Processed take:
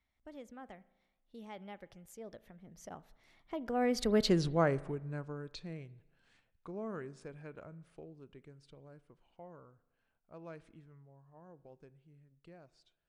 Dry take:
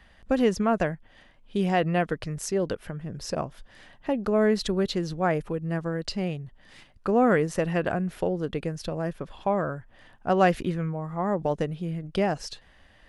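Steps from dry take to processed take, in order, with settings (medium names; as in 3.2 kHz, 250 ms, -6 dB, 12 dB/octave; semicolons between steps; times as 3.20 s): Doppler pass-by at 4.34 s, 47 m/s, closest 9.3 m; spring tank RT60 1 s, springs 36 ms, chirp 50 ms, DRR 18.5 dB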